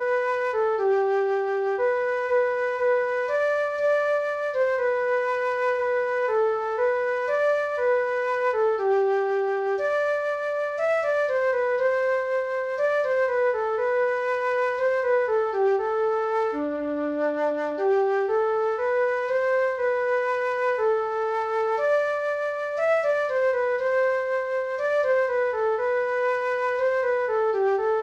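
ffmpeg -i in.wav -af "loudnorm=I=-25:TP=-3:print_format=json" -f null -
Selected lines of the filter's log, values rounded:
"input_i" : "-24.0",
"input_tp" : "-13.4",
"input_lra" : "0.6",
"input_thresh" : "-34.0",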